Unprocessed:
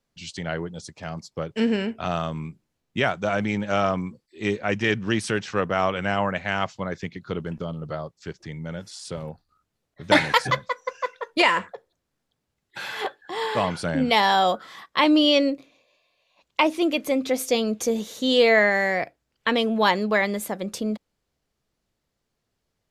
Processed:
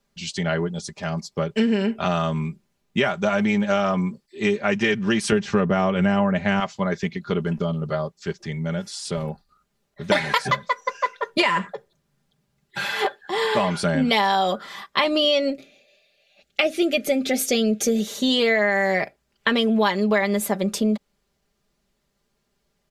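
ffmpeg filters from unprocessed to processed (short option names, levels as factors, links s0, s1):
-filter_complex "[0:a]asettb=1/sr,asplit=3[s0][s1][s2];[s0]atrim=end=5.324[s3];[s1]atrim=start=5.32:end=6.6,asetpts=PTS-STARTPTS,afade=t=in:d=0.004:c=qsin,afade=t=out:st=1.276:d=0.004:c=qsin,lowshelf=f=490:g=11.5[s4];[s2]atrim=start=6.596[s5];[s3][s4]acrossfade=d=0.004:c1=hsin:c2=qsin[s6];[s6][s5]acrossfade=d=0.004:c1=qsin:c2=hsin,asettb=1/sr,asplit=3[s7][s8][s9];[s7]atrim=end=11.234[s10];[s8]atrim=start=11.23:end=12.85,asetpts=PTS-STARTPTS,afade=t=in:d=0.004:c=qsin,afade=t=out:st=1.616:d=0.004:c=qsin,equalizer=f=140:t=o:w=0.77:g=10.5[s11];[s9]atrim=start=12.846[s12];[s10][s11]acrossfade=d=0.004:c1=hsin:c2=qsin[s13];[s13][s12]acrossfade=d=0.004:c1=qsin:c2=hsin,asettb=1/sr,asplit=3[s14][s15][s16];[s14]atrim=end=15.504[s17];[s15]atrim=start=15.5:end=18.07,asetpts=PTS-STARTPTS,afade=t=in:d=0.004:c=qsin,afade=t=out:st=2.566:d=0.004:c=qsin,asuperstop=centerf=1000:order=4:qfactor=2.1[s18];[s16]atrim=start=18.066[s19];[s17][s18]acrossfade=d=0.004:c1=hsin:c2=qsin[s20];[s20][s19]acrossfade=d=0.004:c1=qsin:c2=hsin,aecho=1:1:5:0.64,acompressor=threshold=0.0891:ratio=6,volume=1.68"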